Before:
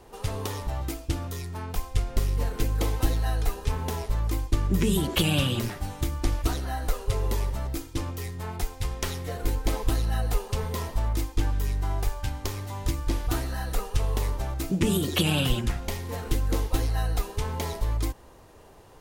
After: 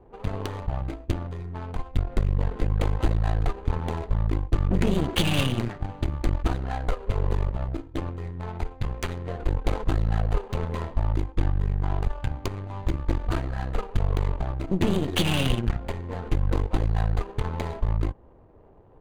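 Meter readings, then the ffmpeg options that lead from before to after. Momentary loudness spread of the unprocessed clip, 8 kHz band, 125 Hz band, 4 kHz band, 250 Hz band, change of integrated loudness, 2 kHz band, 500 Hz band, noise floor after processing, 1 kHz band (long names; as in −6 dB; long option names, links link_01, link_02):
9 LU, −8.0 dB, +2.0 dB, −1.5 dB, +1.0 dB, +1.0 dB, 0.0 dB, +1.0 dB, −50 dBFS, +1.0 dB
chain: -af "adynamicsmooth=sensitivity=6:basefreq=620,aeval=exprs='0.355*(cos(1*acos(clip(val(0)/0.355,-1,1)))-cos(1*PI/2))+0.0447*(cos(8*acos(clip(val(0)/0.355,-1,1)))-cos(8*PI/2))':channel_layout=same,bandreject=frequency=5400:width=7"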